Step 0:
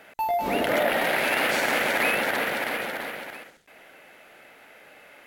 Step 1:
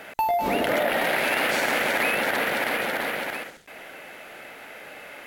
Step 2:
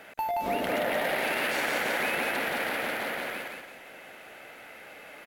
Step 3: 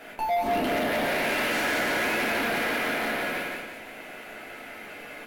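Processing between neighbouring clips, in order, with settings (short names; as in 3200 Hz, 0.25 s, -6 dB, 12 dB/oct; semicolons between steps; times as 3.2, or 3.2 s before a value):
compressor 2.5:1, threshold -33 dBFS, peak gain reduction 9.5 dB; gain +8.5 dB
feedback echo 0.175 s, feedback 36%, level -3 dB; gain -7 dB
shoebox room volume 260 m³, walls furnished, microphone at 3.1 m; soft clip -21.5 dBFS, distortion -12 dB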